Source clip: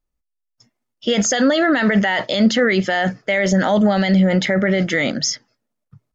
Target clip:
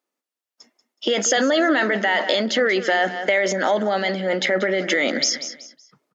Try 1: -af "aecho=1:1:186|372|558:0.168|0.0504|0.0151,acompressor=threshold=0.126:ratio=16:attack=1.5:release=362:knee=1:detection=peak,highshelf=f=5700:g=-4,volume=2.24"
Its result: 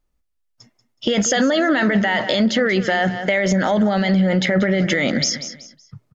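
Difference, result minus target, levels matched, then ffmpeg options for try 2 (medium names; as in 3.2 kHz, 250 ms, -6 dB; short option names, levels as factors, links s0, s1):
250 Hz band +5.5 dB
-af "aecho=1:1:186|372|558:0.168|0.0504|0.0151,acompressor=threshold=0.126:ratio=16:attack=1.5:release=362:knee=1:detection=peak,highpass=f=280:w=0.5412,highpass=f=280:w=1.3066,highshelf=f=5700:g=-4,volume=2.24"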